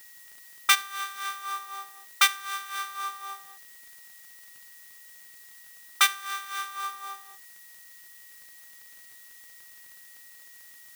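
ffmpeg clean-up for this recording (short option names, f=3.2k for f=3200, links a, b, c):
-af "adeclick=t=4,bandreject=f=1.9k:w=30,afftdn=nr=30:nf=-50"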